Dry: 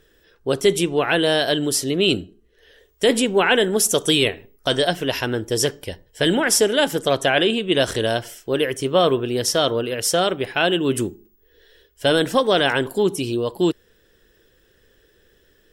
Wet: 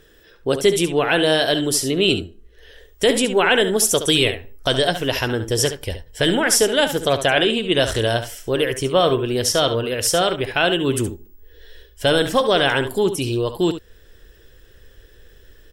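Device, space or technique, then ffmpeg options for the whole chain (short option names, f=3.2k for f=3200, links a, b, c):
parallel compression: -filter_complex "[0:a]asubboost=boost=3.5:cutoff=96,asplit=2[a][b];[b]acompressor=threshold=-32dB:ratio=6,volume=-1.5dB[c];[a][c]amix=inputs=2:normalize=0,aecho=1:1:70:0.299"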